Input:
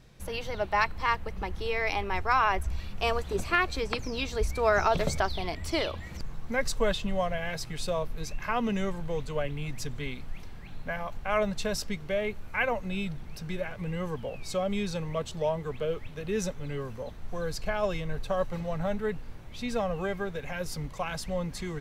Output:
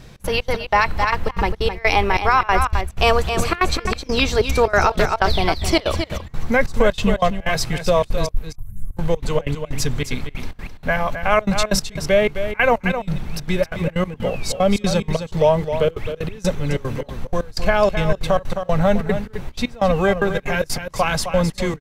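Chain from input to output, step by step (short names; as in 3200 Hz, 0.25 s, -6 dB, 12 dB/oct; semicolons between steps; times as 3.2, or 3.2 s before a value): 8.29–8.97 inverse Chebyshev band-stop 210–5900 Hz, stop band 40 dB; step gate "xx.xx.x..xxxx." 187 bpm -24 dB; echo 0.262 s -9.5 dB; maximiser +18 dB; gain -4 dB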